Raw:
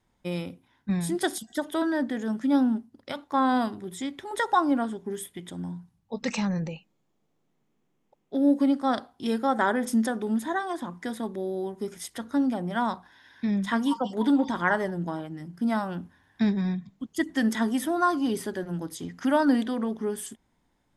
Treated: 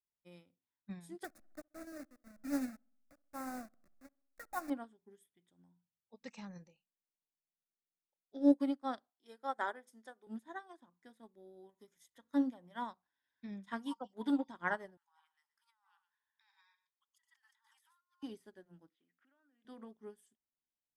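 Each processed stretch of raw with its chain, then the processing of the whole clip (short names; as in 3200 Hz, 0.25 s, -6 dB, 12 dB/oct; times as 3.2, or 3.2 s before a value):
1.24–4.7 level-crossing sampler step -24.5 dBFS + fixed phaser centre 630 Hz, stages 8 + dark delay 65 ms, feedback 60%, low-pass 1300 Hz, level -18 dB
6.53–8.52 synth low-pass 6100 Hz, resonance Q 3.4 + doubler 28 ms -13 dB
9.1–10.27 HPF 400 Hz + notch 2700 Hz, Q 9.7
11.69–12.9 ripple EQ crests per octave 1.1, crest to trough 6 dB + mismatched tape noise reduction encoder only
14.97–18.23 brick-wall FIR high-pass 790 Hz + echo 0.12 s -14.5 dB + negative-ratio compressor -44 dBFS
18.89–19.65 compressor 8:1, threshold -33 dBFS + speaker cabinet 330–3000 Hz, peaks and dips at 440 Hz -7 dB, 650 Hz -7 dB, 950 Hz -9 dB, 1500 Hz +3 dB, 2600 Hz +4 dB
whole clip: low shelf 280 Hz -4 dB; upward expander 2.5:1, over -38 dBFS; gain -3.5 dB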